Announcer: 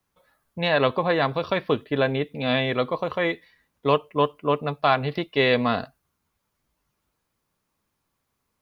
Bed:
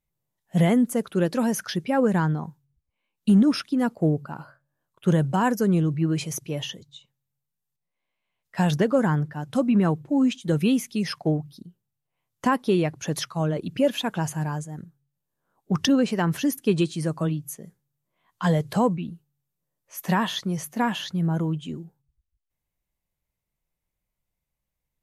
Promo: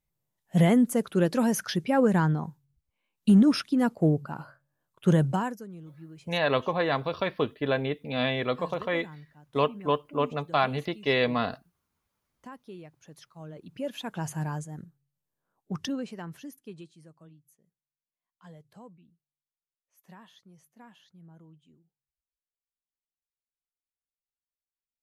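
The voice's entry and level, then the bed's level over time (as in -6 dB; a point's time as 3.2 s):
5.70 s, -4.5 dB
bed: 5.31 s -1 dB
5.69 s -23 dB
13.18 s -23 dB
14.38 s -4 dB
15.27 s -4 dB
17.16 s -28 dB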